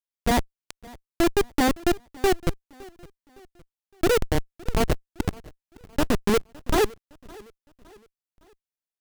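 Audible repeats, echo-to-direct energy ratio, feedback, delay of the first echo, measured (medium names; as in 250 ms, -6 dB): 2, -22.0 dB, 44%, 562 ms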